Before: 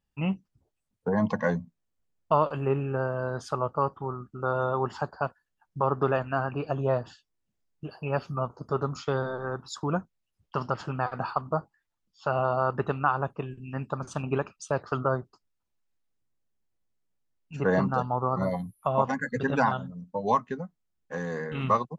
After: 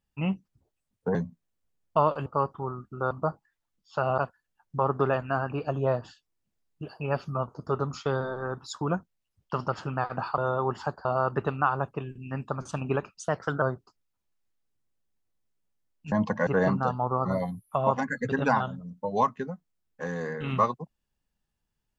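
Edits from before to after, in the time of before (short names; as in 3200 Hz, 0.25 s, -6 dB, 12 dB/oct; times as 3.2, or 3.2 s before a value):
1.15–1.5 move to 17.58
2.61–3.68 cut
4.53–5.2 swap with 11.4–12.47
14.66–15.08 speed 111%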